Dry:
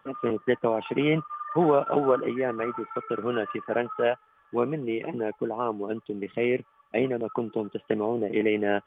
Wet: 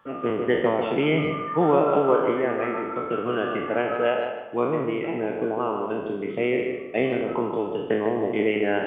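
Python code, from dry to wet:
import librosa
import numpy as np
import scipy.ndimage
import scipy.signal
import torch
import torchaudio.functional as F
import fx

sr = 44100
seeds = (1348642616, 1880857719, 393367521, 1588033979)

y = fx.spec_trails(x, sr, decay_s=0.81)
y = fx.echo_tape(y, sr, ms=150, feedback_pct=35, wet_db=-5.0, lp_hz=2700.0, drive_db=7.0, wow_cents=14)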